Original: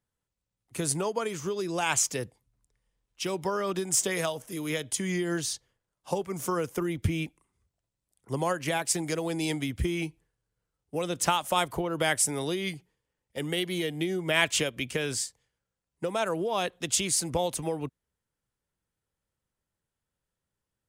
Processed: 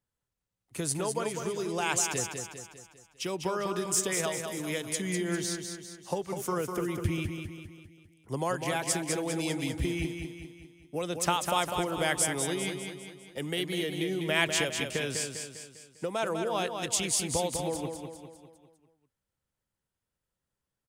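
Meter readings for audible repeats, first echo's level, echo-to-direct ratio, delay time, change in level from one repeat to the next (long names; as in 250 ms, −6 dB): 5, −6.0 dB, −5.0 dB, 200 ms, −6.0 dB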